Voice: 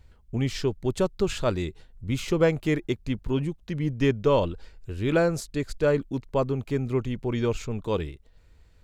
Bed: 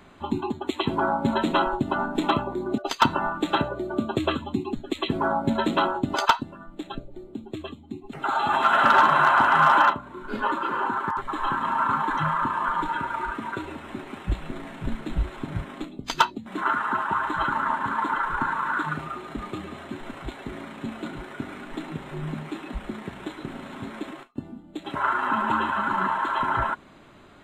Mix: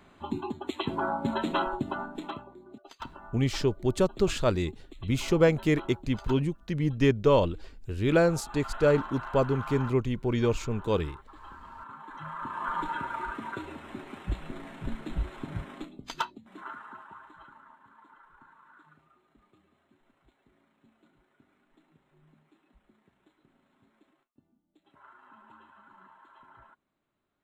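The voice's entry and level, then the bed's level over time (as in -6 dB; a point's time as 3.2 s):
3.00 s, 0.0 dB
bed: 1.84 s -6 dB
2.64 s -22 dB
11.97 s -22 dB
12.74 s -5.5 dB
15.74 s -5.5 dB
17.77 s -31 dB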